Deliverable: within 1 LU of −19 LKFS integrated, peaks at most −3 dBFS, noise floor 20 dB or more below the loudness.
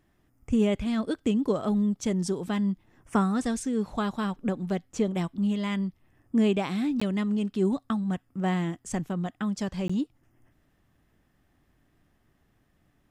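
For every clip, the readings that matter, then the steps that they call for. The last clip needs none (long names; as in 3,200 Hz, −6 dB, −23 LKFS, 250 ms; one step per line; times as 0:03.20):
number of dropouts 2; longest dropout 15 ms; integrated loudness −28.5 LKFS; sample peak −11.5 dBFS; target loudness −19.0 LKFS
→ repair the gap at 0:07.00/0:09.88, 15 ms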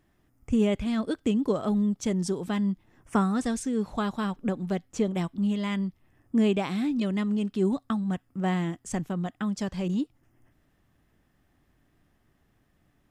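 number of dropouts 0; integrated loudness −28.5 LKFS; sample peak −11.5 dBFS; target loudness −19.0 LKFS
→ level +9.5 dB
brickwall limiter −3 dBFS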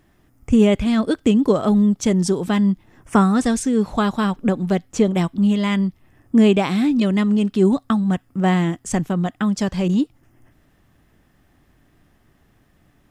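integrated loudness −19.0 LKFS; sample peak −3.0 dBFS; background noise floor −59 dBFS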